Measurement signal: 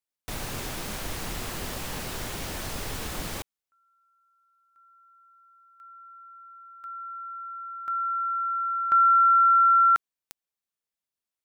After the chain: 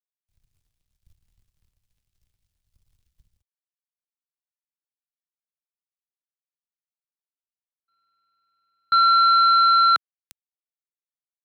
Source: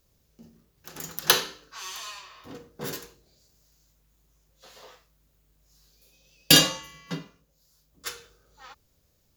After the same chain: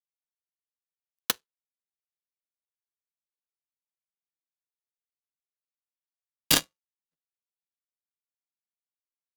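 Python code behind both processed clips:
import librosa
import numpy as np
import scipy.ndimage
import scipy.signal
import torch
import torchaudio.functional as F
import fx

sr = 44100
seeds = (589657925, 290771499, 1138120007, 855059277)

y = fx.dmg_buzz(x, sr, base_hz=100.0, harmonics=30, level_db=-56.0, tilt_db=-2, odd_only=False)
y = fx.power_curve(y, sr, exponent=3.0)
y = fx.band_widen(y, sr, depth_pct=100)
y = y * 10.0 ** (-4.0 / 20.0)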